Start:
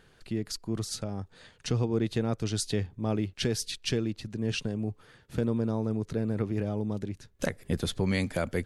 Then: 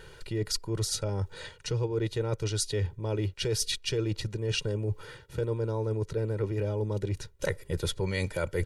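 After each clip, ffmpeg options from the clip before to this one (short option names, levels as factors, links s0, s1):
-af "aecho=1:1:2.1:0.85,areverse,acompressor=threshold=0.0178:ratio=6,areverse,volume=2.51"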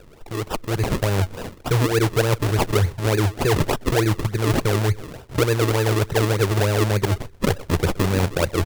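-filter_complex "[0:a]asplit=2[s0][s1];[s1]adelay=124,lowpass=f=5000:p=1,volume=0.0794,asplit=2[s2][s3];[s3]adelay=124,lowpass=f=5000:p=1,volume=0.26[s4];[s0][s2][s4]amix=inputs=3:normalize=0,dynaudnorm=f=470:g=3:m=2.66,acrusher=samples=40:mix=1:aa=0.000001:lfo=1:lforange=40:lforate=3.4,volume=1.26"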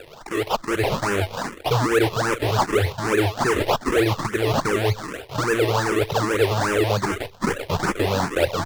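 -filter_complex "[0:a]asplit=2[s0][s1];[s1]highpass=f=720:p=1,volume=10,asoftclip=type=tanh:threshold=0.422[s2];[s0][s2]amix=inputs=2:normalize=0,lowpass=f=5400:p=1,volume=0.501,asplit=2[s3][s4];[s4]afreqshift=2.5[s5];[s3][s5]amix=inputs=2:normalize=1"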